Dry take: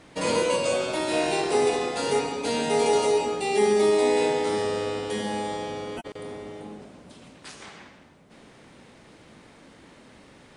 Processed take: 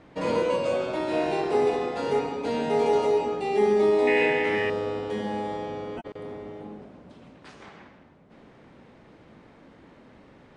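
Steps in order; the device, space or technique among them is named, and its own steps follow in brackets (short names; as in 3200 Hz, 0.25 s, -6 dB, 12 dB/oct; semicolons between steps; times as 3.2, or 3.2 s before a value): 4.07–4.7 band shelf 2200 Hz +15 dB 1 oct; through cloth (LPF 7400 Hz 12 dB/oct; high shelf 3100 Hz -15 dB)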